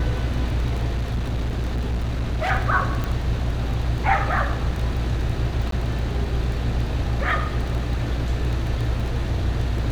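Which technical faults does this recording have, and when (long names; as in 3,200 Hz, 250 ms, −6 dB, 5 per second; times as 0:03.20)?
surface crackle 11 per second −26 dBFS
0:00.96–0:02.51: clipping −20 dBFS
0:03.04: click −13 dBFS
0:05.71–0:05.72: drop-out 13 ms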